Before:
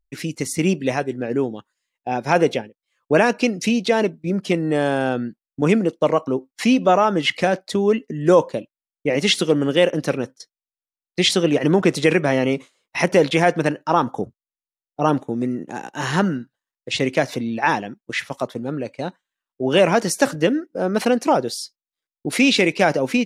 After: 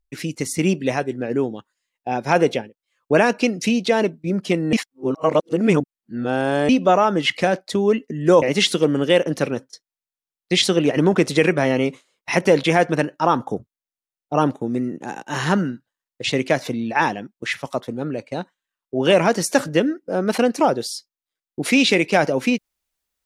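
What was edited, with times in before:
4.73–6.69 s: reverse
8.42–9.09 s: delete

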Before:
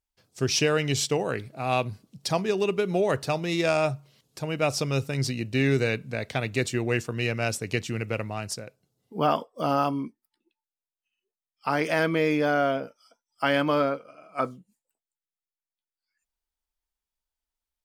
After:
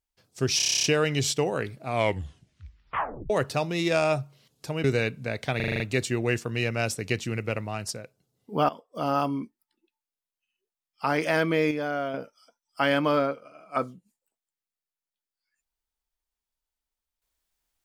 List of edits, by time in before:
0.57 s: stutter 0.03 s, 10 plays
1.57 s: tape stop 1.46 s
4.57–5.71 s: delete
6.43 s: stutter 0.04 s, 7 plays
9.32–10.04 s: fade in equal-power, from -18 dB
12.34–12.77 s: gain -6 dB

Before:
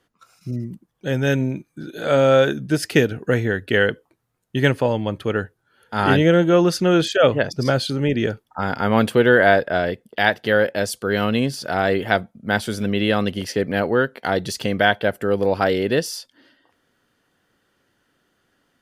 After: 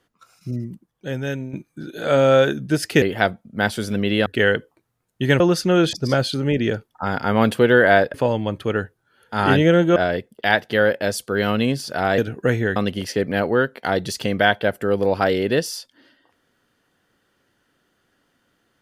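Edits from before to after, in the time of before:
0.54–1.53 s: fade out, to -11 dB
3.02–3.60 s: swap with 11.92–13.16 s
4.74–6.56 s: move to 9.70 s
7.09–7.49 s: delete

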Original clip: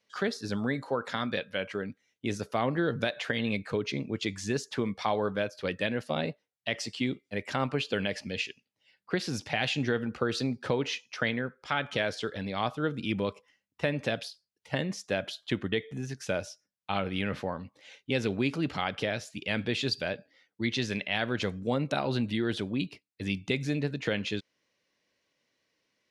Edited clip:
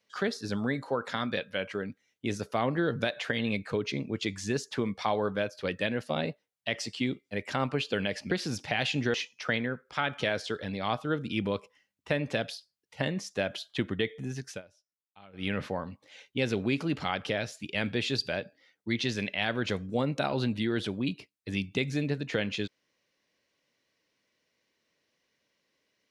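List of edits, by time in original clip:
8.31–9.13 s: delete
9.96–10.87 s: delete
16.21–17.20 s: dip -23 dB, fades 0.14 s

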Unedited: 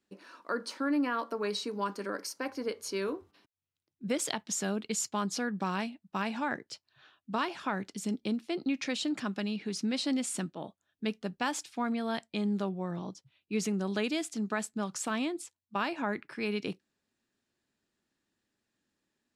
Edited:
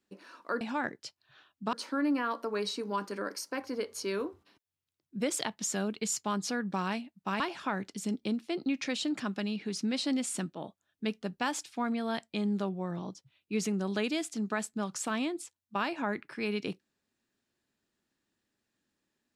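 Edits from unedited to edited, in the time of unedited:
6.28–7.40 s: move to 0.61 s

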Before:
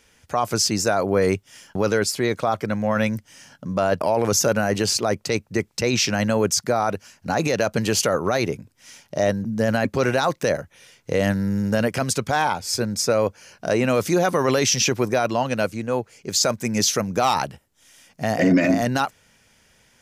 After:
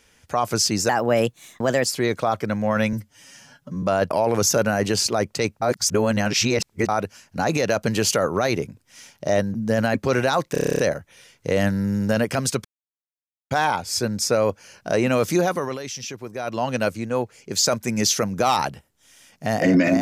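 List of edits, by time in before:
0.89–2.06 s: speed 121%
3.13–3.73 s: stretch 1.5×
5.52–6.79 s: reverse
10.42 s: stutter 0.03 s, 10 plays
12.28 s: insert silence 0.86 s
14.15–15.51 s: dip -13 dB, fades 0.40 s

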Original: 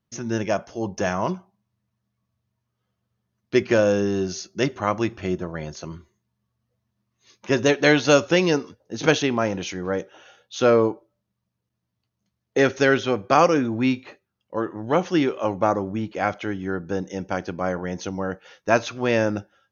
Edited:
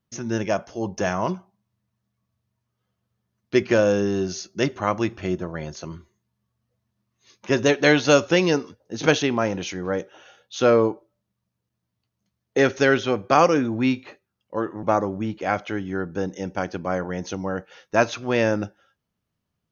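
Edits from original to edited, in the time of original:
14.83–15.57 s: delete

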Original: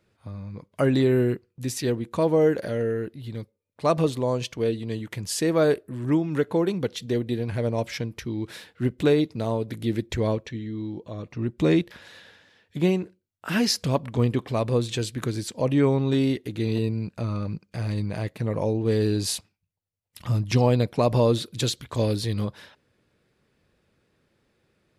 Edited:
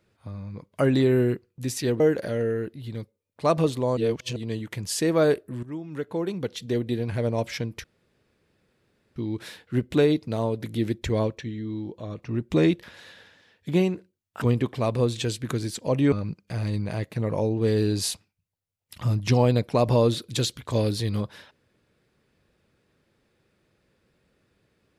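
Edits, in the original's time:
2.00–2.40 s: delete
4.37–4.76 s: reverse
6.03–7.25 s: fade in, from -16.5 dB
8.24 s: insert room tone 1.32 s
13.50–14.15 s: delete
15.85–17.36 s: delete

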